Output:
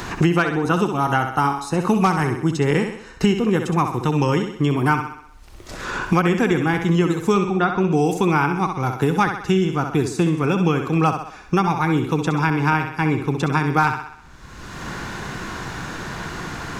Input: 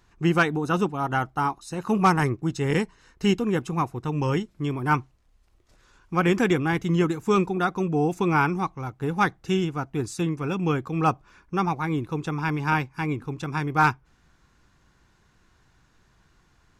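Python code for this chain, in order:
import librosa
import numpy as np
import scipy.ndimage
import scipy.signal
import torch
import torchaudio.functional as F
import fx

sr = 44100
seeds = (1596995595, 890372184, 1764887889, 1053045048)

y = fx.lowpass(x, sr, hz=3300.0, slope=12, at=(7.38, 7.89))
y = fx.echo_thinned(y, sr, ms=64, feedback_pct=42, hz=170.0, wet_db=-7.5)
y = fx.band_squash(y, sr, depth_pct=100)
y = F.gain(torch.from_numpy(y), 4.0).numpy()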